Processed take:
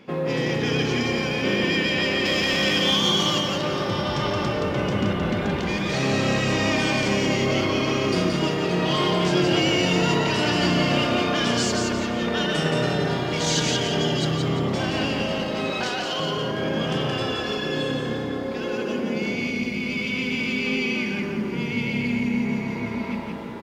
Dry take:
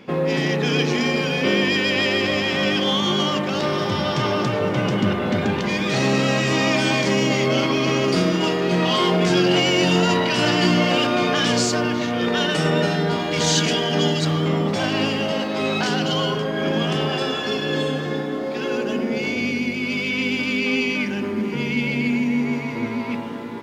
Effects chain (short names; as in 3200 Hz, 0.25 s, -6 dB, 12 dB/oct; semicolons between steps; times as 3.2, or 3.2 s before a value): 2.25–3.41 high shelf 3500 Hz +11 dB; 15.7–16.2 HPF 420 Hz 12 dB/oct; frequency-shifting echo 0.173 s, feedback 33%, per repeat -33 Hz, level -4 dB; gain -4.5 dB